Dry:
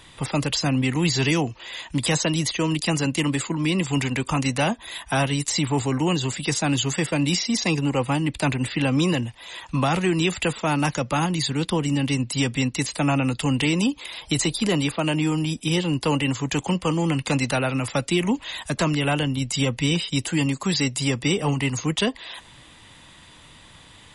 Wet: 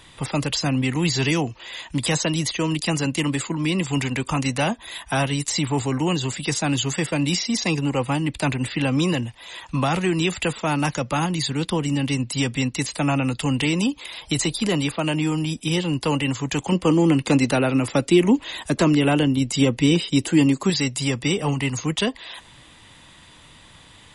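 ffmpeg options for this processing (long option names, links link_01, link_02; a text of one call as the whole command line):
ffmpeg -i in.wav -filter_complex "[0:a]asettb=1/sr,asplit=3[link_01][link_02][link_03];[link_01]atrim=end=16.724[link_04];[link_02]atrim=start=16.72:end=20.7,asetpts=PTS-STARTPTS,afade=type=in:duration=0.004:curve=qsin,afade=type=out:start_time=3.976:duration=0.004:curve=qsin,equalizer=frequency=330:width=1.1:gain=8.5[link_05];[link_03]atrim=start=20.696[link_06];[link_04][link_05]acrossfade=duration=0.004:curve1=hsin:curve2=qsin[link_07];[link_07][link_06]acrossfade=duration=0.004:curve1=qsin:curve2=hsin" out.wav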